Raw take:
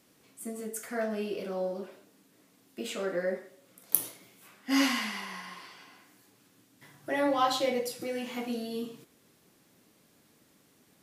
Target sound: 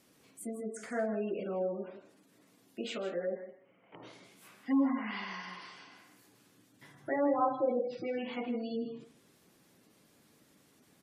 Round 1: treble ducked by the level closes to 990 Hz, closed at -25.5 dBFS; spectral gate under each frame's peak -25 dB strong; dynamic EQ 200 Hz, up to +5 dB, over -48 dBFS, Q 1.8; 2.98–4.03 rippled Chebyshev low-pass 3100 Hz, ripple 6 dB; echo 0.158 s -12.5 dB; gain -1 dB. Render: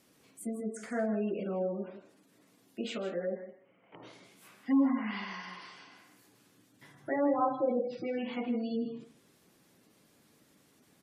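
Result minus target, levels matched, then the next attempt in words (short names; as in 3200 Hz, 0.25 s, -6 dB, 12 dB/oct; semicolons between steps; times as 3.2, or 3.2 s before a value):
125 Hz band +3.0 dB
treble ducked by the level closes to 990 Hz, closed at -25.5 dBFS; spectral gate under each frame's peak -25 dB strong; dynamic EQ 51 Hz, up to +5 dB, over -48 dBFS, Q 1.8; 2.98–4.03 rippled Chebyshev low-pass 3100 Hz, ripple 6 dB; echo 0.158 s -12.5 dB; gain -1 dB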